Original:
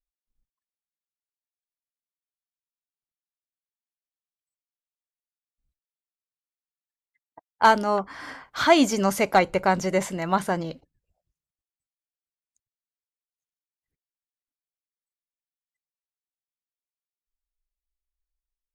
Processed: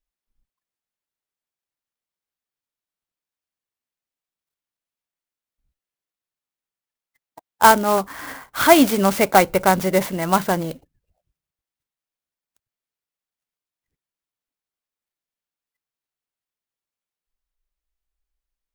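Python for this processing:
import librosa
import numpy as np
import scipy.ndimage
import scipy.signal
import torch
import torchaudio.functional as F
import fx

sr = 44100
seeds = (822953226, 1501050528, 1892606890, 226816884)

y = fx.clock_jitter(x, sr, seeds[0], jitter_ms=0.043)
y = y * 10.0 ** (5.0 / 20.0)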